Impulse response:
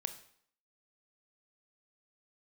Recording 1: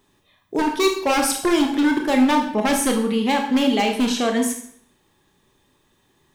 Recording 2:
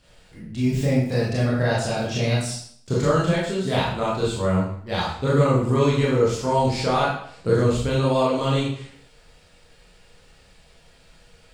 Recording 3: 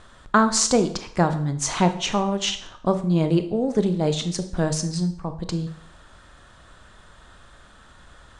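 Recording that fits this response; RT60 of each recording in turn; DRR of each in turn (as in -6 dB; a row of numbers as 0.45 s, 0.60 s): 3; 0.60 s, 0.60 s, 0.60 s; 2.5 dB, -7.0 dB, 9.0 dB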